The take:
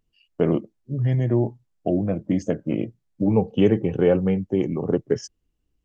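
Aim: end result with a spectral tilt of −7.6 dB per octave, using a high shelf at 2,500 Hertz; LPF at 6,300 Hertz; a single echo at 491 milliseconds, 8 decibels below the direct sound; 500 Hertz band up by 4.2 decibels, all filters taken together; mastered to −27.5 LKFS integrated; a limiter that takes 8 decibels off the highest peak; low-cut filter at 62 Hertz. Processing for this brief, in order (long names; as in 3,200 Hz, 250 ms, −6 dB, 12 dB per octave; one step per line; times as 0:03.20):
high-pass filter 62 Hz
low-pass filter 6,300 Hz
parametric band 500 Hz +5.5 dB
high-shelf EQ 2,500 Hz −7.5 dB
brickwall limiter −11 dBFS
single-tap delay 491 ms −8 dB
level −4.5 dB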